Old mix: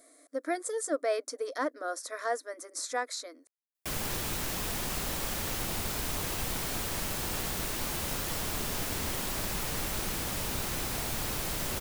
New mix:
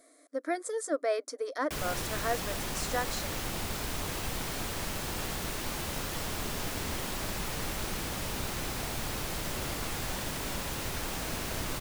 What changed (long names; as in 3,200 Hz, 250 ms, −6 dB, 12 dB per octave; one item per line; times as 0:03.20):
background: entry −2.15 s
master: add high-shelf EQ 7,800 Hz −6 dB